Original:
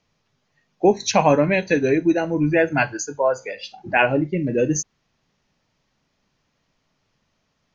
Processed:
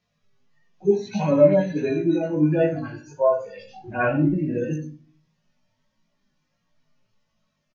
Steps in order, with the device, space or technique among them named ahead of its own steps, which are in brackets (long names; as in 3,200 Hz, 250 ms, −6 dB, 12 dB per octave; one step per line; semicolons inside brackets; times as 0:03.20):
harmonic-percussive split with one part muted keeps harmonic
rectangular room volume 290 cubic metres, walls furnished, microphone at 1 metre
0:03.56–0:04.34: low-shelf EQ 250 Hz +8.5 dB
double-tracked vocal (double-tracking delay 17 ms −5 dB; chorus effect 1.5 Hz, delay 18 ms, depth 2.5 ms)